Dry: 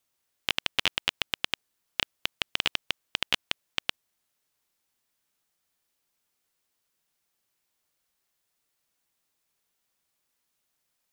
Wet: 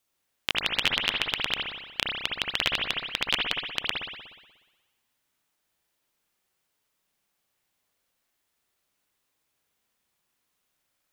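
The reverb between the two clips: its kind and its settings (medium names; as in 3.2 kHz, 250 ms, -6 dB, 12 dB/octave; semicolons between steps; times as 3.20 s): spring tank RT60 1.2 s, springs 60 ms, chirp 30 ms, DRR -1 dB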